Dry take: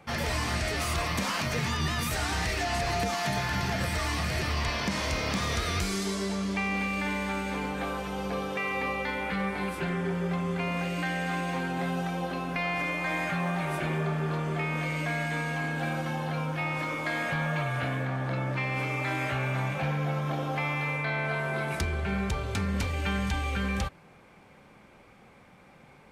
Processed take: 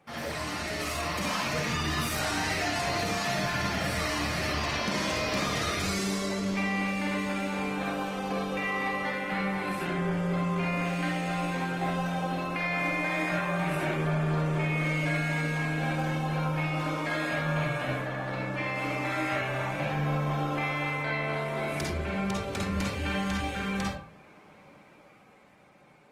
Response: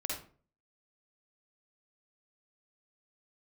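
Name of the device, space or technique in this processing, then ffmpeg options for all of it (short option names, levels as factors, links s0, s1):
far-field microphone of a smart speaker: -filter_complex "[1:a]atrim=start_sample=2205[s0];[0:a][s0]afir=irnorm=-1:irlink=0,highpass=140,dynaudnorm=f=150:g=17:m=1.58,volume=0.596" -ar 48000 -c:a libopus -b:a 20k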